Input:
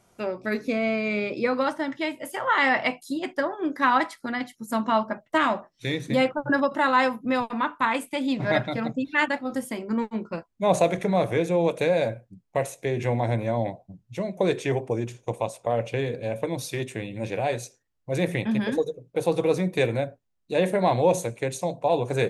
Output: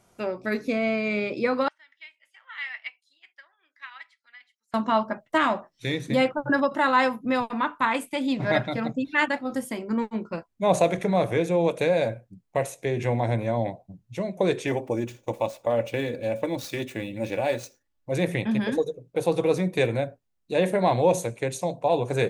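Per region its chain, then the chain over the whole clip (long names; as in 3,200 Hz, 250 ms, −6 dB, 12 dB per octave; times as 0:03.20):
0:01.68–0:04.74: four-pole ladder band-pass 2,800 Hz, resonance 35% + expander for the loud parts, over −46 dBFS
0:14.67–0:18.12: running median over 5 samples + high-shelf EQ 6,800 Hz +5.5 dB + comb filter 3.5 ms, depth 45%
whole clip: no processing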